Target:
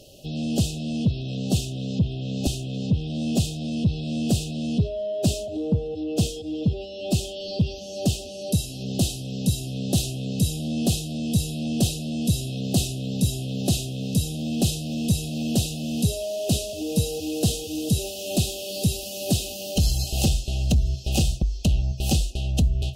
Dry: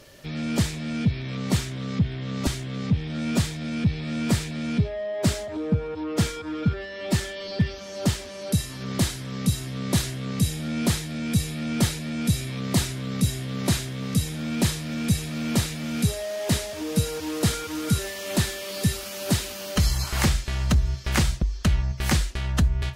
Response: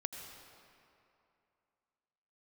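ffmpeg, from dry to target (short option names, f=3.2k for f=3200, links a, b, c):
-af "afftfilt=real='re*(1-between(b*sr/4096,810,2500))':imag='im*(1-between(b*sr/4096,810,2500))':win_size=4096:overlap=0.75,aeval=exprs='0.335*(cos(1*acos(clip(val(0)/0.335,-1,1)))-cos(1*PI/2))+0.015*(cos(5*acos(clip(val(0)/0.335,-1,1)))-cos(5*PI/2))':c=same"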